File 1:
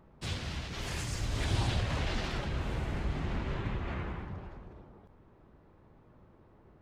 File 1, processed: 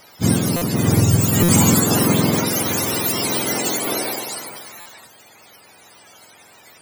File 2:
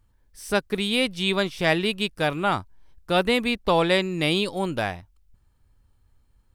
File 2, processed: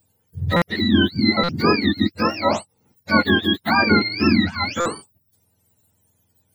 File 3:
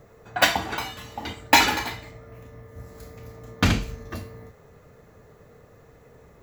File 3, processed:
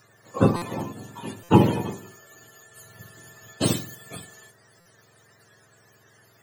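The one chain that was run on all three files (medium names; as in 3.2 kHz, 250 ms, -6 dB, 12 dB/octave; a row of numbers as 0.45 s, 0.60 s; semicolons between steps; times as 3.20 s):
spectrum inverted on a logarithmic axis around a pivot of 890 Hz; buffer glitch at 0.56/1.43/4.80 s, samples 256, times 9; peak normalisation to -2 dBFS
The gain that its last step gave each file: +19.0 dB, +5.5 dB, -1.0 dB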